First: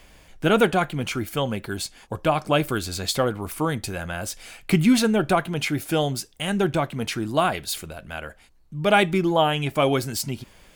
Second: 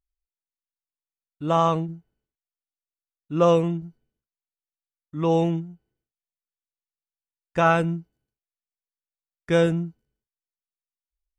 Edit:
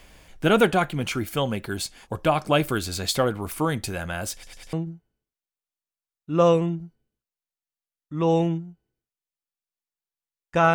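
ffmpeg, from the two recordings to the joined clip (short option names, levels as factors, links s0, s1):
-filter_complex "[0:a]apad=whole_dur=10.74,atrim=end=10.74,asplit=4[s0][s1][s2][s3];[s0]atrim=end=4.432[s4];[s1]atrim=start=4.328:end=4.432[s5];[s2]atrim=start=4.328:end=4.432[s6];[s3]atrim=start=4.328:end=4.432[s7];[1:a]atrim=start=1.748:end=7.76[s8];[s4][s5]acrossfade=d=0.004:c1=hsin:c2=hsin[s9];[s9][s6]acrossfade=d=0.004:c1=hsin:c2=hsin[s10];[s10][s7]acrossfade=d=0.004:c1=hsin:c2=hsin[s11];[s11][s8]acrossfade=d=0.004:c1=hsin:c2=hsin"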